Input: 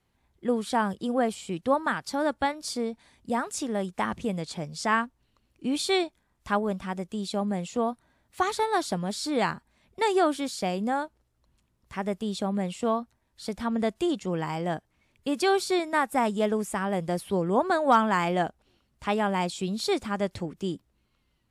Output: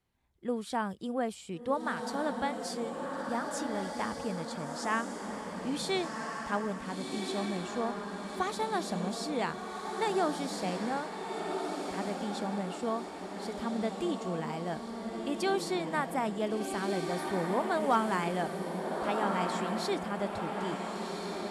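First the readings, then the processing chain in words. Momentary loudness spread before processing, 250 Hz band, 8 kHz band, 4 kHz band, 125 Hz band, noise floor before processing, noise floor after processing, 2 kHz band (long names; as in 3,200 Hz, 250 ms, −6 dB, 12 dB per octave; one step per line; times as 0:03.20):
10 LU, −5.0 dB, −5.0 dB, −5.0 dB, −5.0 dB, −72 dBFS, −42 dBFS, −5.0 dB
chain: feedback delay with all-pass diffusion 1,439 ms, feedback 52%, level −3.5 dB
level −7 dB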